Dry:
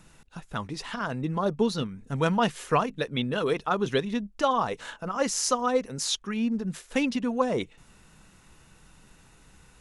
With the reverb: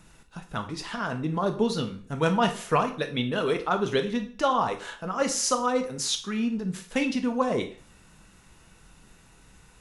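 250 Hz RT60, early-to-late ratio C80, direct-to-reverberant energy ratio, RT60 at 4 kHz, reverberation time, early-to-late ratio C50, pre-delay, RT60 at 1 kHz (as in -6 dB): 0.45 s, 16.0 dB, 6.0 dB, 0.40 s, 0.45 s, 12.0 dB, 5 ms, 0.45 s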